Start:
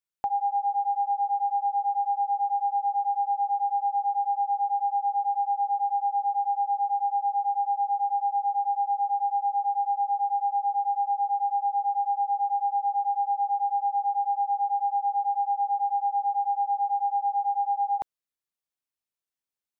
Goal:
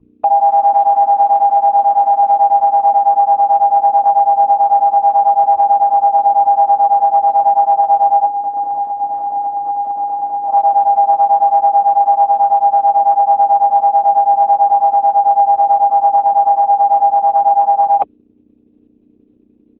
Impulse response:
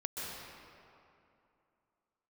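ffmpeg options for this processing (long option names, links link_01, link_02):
-filter_complex "[0:a]aeval=exprs='val(0)+0.00708*(sin(2*PI*60*n/s)+sin(2*PI*2*60*n/s)/2+sin(2*PI*3*60*n/s)/3+sin(2*PI*4*60*n/s)/4+sin(2*PI*5*60*n/s)/5)':channel_layout=same,tremolo=f=150:d=0.519,asplit=3[link_01][link_02][link_03];[link_01]bandpass=frequency=730:width_type=q:width=8,volume=0dB[link_04];[link_02]bandpass=frequency=1090:width_type=q:width=8,volume=-6dB[link_05];[link_03]bandpass=frequency=2440:width_type=q:width=8,volume=-9dB[link_06];[link_04][link_05][link_06]amix=inputs=3:normalize=0,aresample=11025,aresample=44100,adynamicequalizer=threshold=0.00501:dfrequency=660:dqfactor=1.7:tfrequency=660:tqfactor=1.7:attack=5:release=100:ratio=0.375:range=2.5:mode=cutabove:tftype=bell,bandreject=frequency=60:width_type=h:width=6,bandreject=frequency=120:width_type=h:width=6,bandreject=frequency=180:width_type=h:width=6,asplit=3[link_07][link_08][link_09];[link_07]afade=type=out:start_time=8.25:duration=0.02[link_10];[link_08]aecho=1:1:6.9:0.94,afade=type=in:start_time=8.25:duration=0.02,afade=type=out:start_time=10.48:duration=0.02[link_11];[link_09]afade=type=in:start_time=10.48:duration=0.02[link_12];[link_10][link_11][link_12]amix=inputs=3:normalize=0,alimiter=level_in=32.5dB:limit=-1dB:release=50:level=0:latency=1,volume=-3.5dB" -ar 48000 -c:a libopus -b:a 8k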